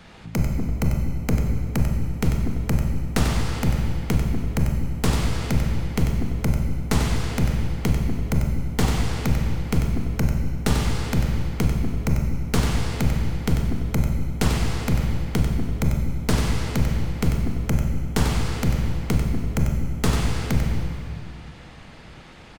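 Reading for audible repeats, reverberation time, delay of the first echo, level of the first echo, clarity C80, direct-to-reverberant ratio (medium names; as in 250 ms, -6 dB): 1, 2.2 s, 94 ms, -7.5 dB, 3.0 dB, 1.5 dB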